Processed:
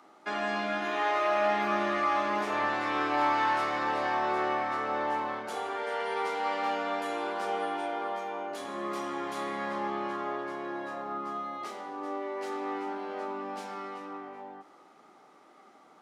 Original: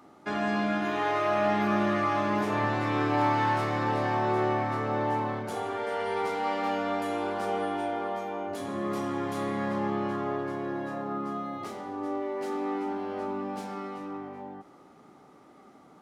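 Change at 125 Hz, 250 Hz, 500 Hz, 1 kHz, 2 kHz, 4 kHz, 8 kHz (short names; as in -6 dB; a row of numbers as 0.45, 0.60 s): -15.5, -7.0, -3.0, -0.5, +1.0, +1.0, -0.5 dB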